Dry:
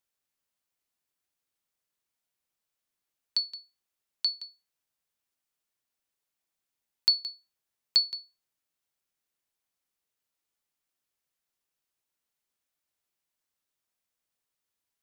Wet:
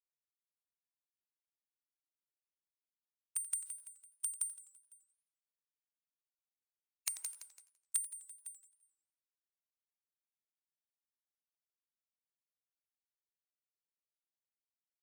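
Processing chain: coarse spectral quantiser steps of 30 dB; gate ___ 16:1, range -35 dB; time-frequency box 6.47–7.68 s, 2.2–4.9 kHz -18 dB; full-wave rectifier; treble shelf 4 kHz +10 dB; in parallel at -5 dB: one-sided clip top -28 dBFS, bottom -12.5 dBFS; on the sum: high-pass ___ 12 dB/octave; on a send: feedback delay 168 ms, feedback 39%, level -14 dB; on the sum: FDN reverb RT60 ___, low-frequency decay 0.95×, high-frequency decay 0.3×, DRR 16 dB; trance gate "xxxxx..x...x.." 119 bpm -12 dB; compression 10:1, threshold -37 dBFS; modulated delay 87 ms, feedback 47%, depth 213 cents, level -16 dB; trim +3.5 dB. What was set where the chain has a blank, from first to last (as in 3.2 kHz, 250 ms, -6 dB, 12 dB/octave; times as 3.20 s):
-56 dBFS, 1.4 kHz, 0.93 s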